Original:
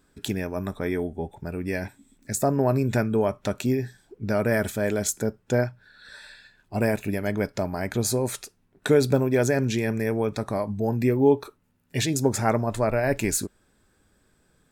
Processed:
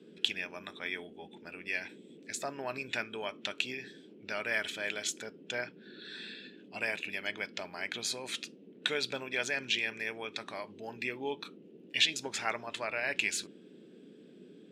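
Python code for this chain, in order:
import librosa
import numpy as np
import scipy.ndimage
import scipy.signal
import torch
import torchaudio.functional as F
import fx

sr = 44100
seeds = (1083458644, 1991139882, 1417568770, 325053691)

y = fx.lowpass_res(x, sr, hz=3000.0, q=3.4)
y = np.diff(y, prepend=0.0)
y = fx.dmg_noise_band(y, sr, seeds[0], low_hz=170.0, high_hz=440.0, level_db=-60.0)
y = F.gain(torch.from_numpy(y), 6.0).numpy()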